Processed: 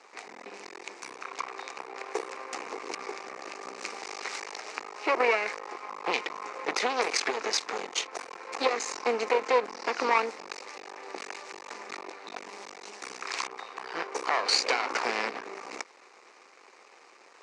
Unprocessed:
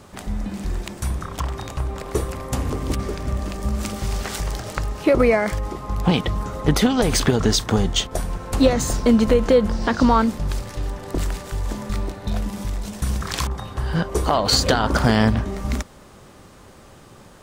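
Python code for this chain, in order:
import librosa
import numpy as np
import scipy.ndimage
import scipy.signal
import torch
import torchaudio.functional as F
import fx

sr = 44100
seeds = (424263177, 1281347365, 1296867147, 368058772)

y = np.maximum(x, 0.0)
y = fx.cabinet(y, sr, low_hz=430.0, low_slope=24, high_hz=6500.0, hz=(600.0, 1500.0, 2300.0, 3300.0), db=(-9, -3, 7, -9))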